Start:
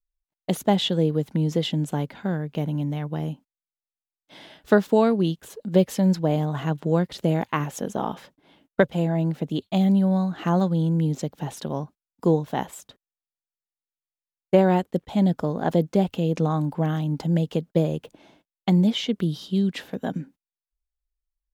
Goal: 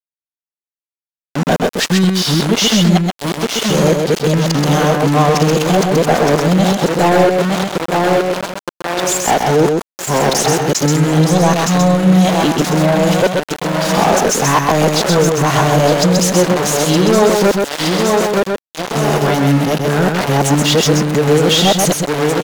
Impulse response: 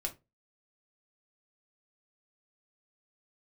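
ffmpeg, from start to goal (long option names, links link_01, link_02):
-filter_complex "[0:a]areverse,highshelf=frequency=4100:width_type=q:width=1.5:gain=10.5,asplit=2[link_01][link_02];[link_02]asoftclip=type=tanh:threshold=-16dB,volume=-3dB[link_03];[link_01][link_03]amix=inputs=2:normalize=0,acontrast=62,aecho=1:1:879|1758|2637|3516|4395:0.299|0.131|0.0578|0.0254|0.0112,acompressor=threshold=-17dB:ratio=2.5,asplit=2[link_04][link_05];[1:a]atrim=start_sample=2205[link_06];[link_05][link_06]afir=irnorm=-1:irlink=0,volume=-19dB[link_07];[link_04][link_07]amix=inputs=2:normalize=0,adynamicequalizer=threshold=0.01:dfrequency=6800:dqfactor=6.2:tfrequency=6800:tqfactor=6.2:attack=5:release=100:ratio=0.375:range=2:mode=boostabove:tftype=bell,aeval=exprs='val(0)*gte(abs(val(0)),0.0708)':channel_layout=same,asplit=2[link_08][link_09];[link_09]highpass=frequency=720:poles=1,volume=19dB,asoftclip=type=tanh:threshold=-5dB[link_10];[link_08][link_10]amix=inputs=2:normalize=0,lowpass=frequency=3200:poles=1,volume=-6dB,asetrate=42336,aresample=44100,aecho=1:1:129:0.631,volume=2dB"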